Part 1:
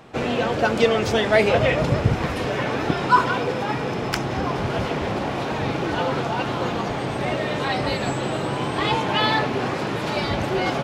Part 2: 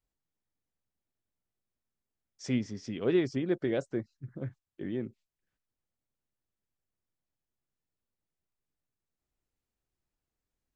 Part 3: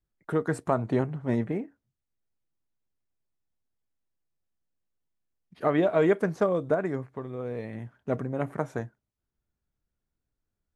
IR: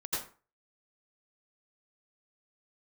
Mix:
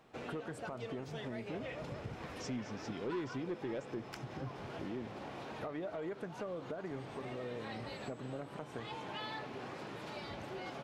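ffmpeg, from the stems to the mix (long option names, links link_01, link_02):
-filter_complex "[0:a]volume=-16.5dB[link_01];[1:a]volume=0.5dB[link_02];[2:a]volume=-2dB[link_03];[link_01][link_03]amix=inputs=2:normalize=0,lowshelf=frequency=140:gain=-5,alimiter=limit=-24dB:level=0:latency=1:release=266,volume=0dB[link_04];[link_02][link_04]amix=inputs=2:normalize=0,asoftclip=type=tanh:threshold=-23dB,acompressor=threshold=-44dB:ratio=2"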